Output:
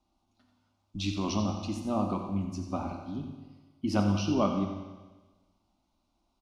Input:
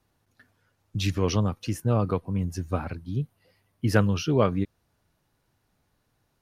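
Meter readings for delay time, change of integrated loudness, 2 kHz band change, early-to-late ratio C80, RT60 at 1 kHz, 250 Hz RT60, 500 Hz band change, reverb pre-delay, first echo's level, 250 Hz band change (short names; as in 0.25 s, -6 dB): 89 ms, -4.5 dB, -9.5 dB, 6.0 dB, 1.3 s, 1.3 s, -6.5 dB, 10 ms, -11.0 dB, -1.5 dB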